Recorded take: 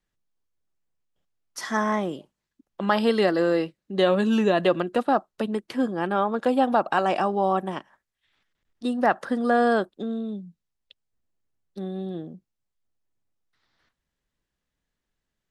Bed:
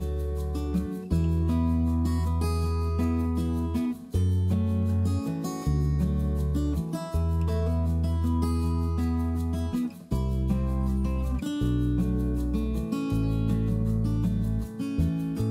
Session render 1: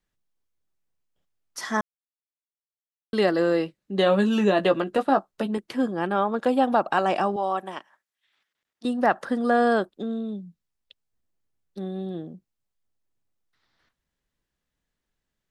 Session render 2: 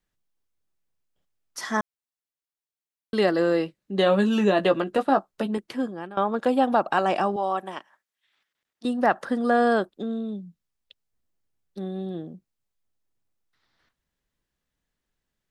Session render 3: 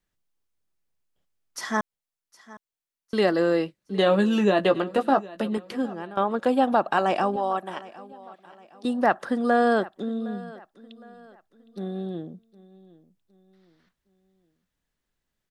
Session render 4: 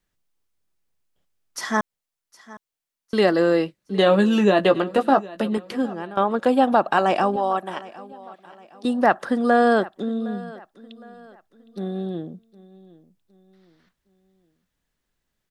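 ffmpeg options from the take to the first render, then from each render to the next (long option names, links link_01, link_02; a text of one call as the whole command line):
ffmpeg -i in.wav -filter_complex "[0:a]asettb=1/sr,asplit=3[link_01][link_02][link_03];[link_01]atrim=end=3.794[link_04];[link_02]atrim=start=3.79:end=5.58,asetpts=PTS-STARTPTS,afade=type=in:duration=0.004:curve=qsin,afade=type=out:start_time=1.786:duration=0.004:curve=qsin,asplit=2[link_05][link_06];[link_06]adelay=15,volume=-7.5dB[link_07];[link_05][link_07]amix=inputs=2:normalize=0,atrim=end_sample=78939[link_08];[link_03]atrim=start=5.576[link_09];[link_04][link_08]acrossfade=duration=0.004:curve1=hsin:curve2=qsin[link_10];[link_10][link_09]acrossfade=duration=0.004:curve1=qsin:curve2=hsin,asettb=1/sr,asplit=3[link_11][link_12][link_13];[link_11]atrim=end=7.364[link_14];[link_12]atrim=start=7.36:end=8.85,asetpts=PTS-STARTPTS,afade=type=in:duration=0.004:curve=qsin,afade=type=out:start_time=1.486:duration=0.004:curve=qsin,highpass=frequency=690:poles=1[link_15];[link_13]atrim=start=8.846[link_16];[link_14][link_15]acrossfade=duration=0.004:curve1=hsin:curve2=qsin[link_17];[link_17][link_16]acrossfade=duration=0.004:curve1=qsin:curve2=hsin,asplit=3[link_18][link_19][link_20];[link_18]atrim=end=1.81,asetpts=PTS-STARTPTS,afade=type=out:start_time=1.806:duration=0.004:curve=hsin[link_21];[link_19]atrim=start=1.81:end=3.13,asetpts=PTS-STARTPTS,volume=0[link_22];[link_20]atrim=start=3.13,asetpts=PTS-STARTPTS,afade=type=in:duration=0.004:curve=hsin[link_23];[link_21][link_22][link_23]concat=n=3:v=0:a=1" out.wav
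ffmpeg -i in.wav -filter_complex "[0:a]asplit=2[link_01][link_02];[link_01]atrim=end=6.17,asetpts=PTS-STARTPTS,afade=type=out:start_time=5.63:duration=0.54:silence=0.11885[link_03];[link_02]atrim=start=6.17,asetpts=PTS-STARTPTS,afade=type=in:duration=0.004:curve=hsin:silence=0.11885[link_04];[link_03][link_04]concat=n=2:v=0:a=1" out.wav
ffmpeg -i in.wav -af "aecho=1:1:762|1524|2286:0.1|0.039|0.0152" out.wav
ffmpeg -i in.wav -af "volume=3.5dB" out.wav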